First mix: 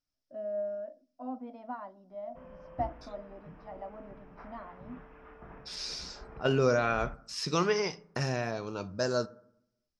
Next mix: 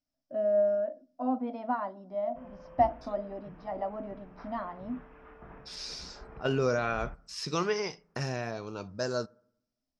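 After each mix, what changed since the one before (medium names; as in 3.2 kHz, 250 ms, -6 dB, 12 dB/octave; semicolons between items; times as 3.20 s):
first voice +9.0 dB; second voice: send -9.5 dB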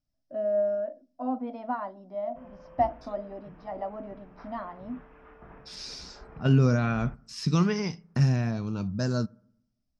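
first voice: send -6.0 dB; second voice: add resonant low shelf 300 Hz +12 dB, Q 1.5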